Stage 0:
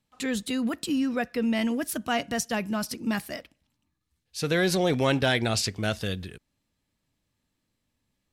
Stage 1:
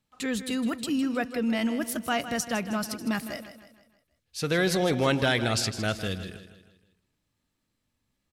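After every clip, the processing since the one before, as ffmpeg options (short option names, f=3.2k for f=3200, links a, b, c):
-filter_complex "[0:a]equalizer=f=1.3k:w=4.2:g=3,asplit=2[a][b];[b]aecho=0:1:158|316|474|632|790:0.251|0.113|0.0509|0.0229|0.0103[c];[a][c]amix=inputs=2:normalize=0,volume=-1dB"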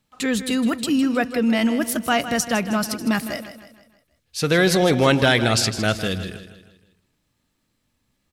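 -af "bandreject=f=50:t=h:w=6,bandreject=f=100:t=h:w=6,volume=7.5dB"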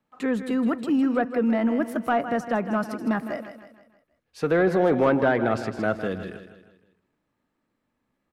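-filter_complex "[0:a]acrossover=split=200 2000:gain=0.251 1 0.141[a][b][c];[a][b][c]amix=inputs=3:normalize=0,acrossover=split=1800[d][e];[e]acompressor=threshold=-43dB:ratio=6[f];[d][f]amix=inputs=2:normalize=0,asoftclip=type=tanh:threshold=-11dB"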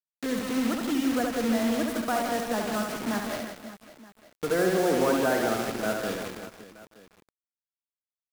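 -filter_complex "[0:a]acrossover=split=150|400|1400[a][b][c][d];[a]acompressor=threshold=-49dB:ratio=8[e];[e][b][c][d]amix=inputs=4:normalize=0,acrusher=bits=4:mix=0:aa=0.000001,aecho=1:1:70|175|332.5|568.8|923.1:0.631|0.398|0.251|0.158|0.1,volume=-5.5dB"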